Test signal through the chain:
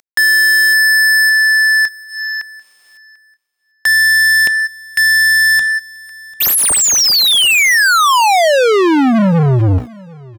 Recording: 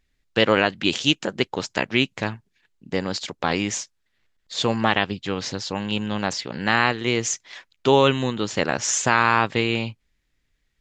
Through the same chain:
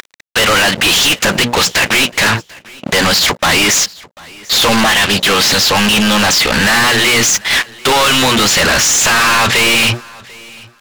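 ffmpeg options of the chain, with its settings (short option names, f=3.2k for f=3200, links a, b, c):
-filter_complex "[0:a]agate=range=-12dB:threshold=-43dB:ratio=16:detection=peak,equalizer=f=410:w=0.49:g=-9,bandreject=f=60:t=h:w=6,bandreject=f=120:t=h:w=6,bandreject=f=180:t=h:w=6,bandreject=f=240:t=h:w=6,asplit=2[a][b];[b]acontrast=78,volume=-2dB[c];[a][c]amix=inputs=2:normalize=0,alimiter=limit=-3.5dB:level=0:latency=1:release=108,acompressor=mode=upward:threshold=-35dB:ratio=2.5,aeval=exprs='sgn(val(0))*max(abs(val(0))-0.00531,0)':c=same,asplit=2[d][e];[e]highpass=f=720:p=1,volume=34dB,asoftclip=type=tanh:threshold=-3.5dB[f];[d][f]amix=inputs=2:normalize=0,lowpass=f=4.2k:p=1,volume=-6dB,asoftclip=type=tanh:threshold=-18dB,aecho=1:1:743|1486:0.0668|0.012,volume=8.5dB"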